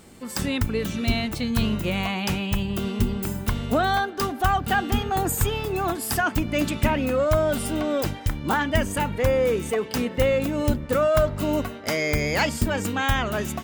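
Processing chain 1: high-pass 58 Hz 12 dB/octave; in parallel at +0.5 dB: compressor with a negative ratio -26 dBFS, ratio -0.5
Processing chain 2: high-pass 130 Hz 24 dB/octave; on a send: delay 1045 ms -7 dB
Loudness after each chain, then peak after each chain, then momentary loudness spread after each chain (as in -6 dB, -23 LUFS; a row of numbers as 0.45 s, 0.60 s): -20.0 LUFS, -24.0 LUFS; -6.0 dBFS, -8.5 dBFS; 3 LU, 5 LU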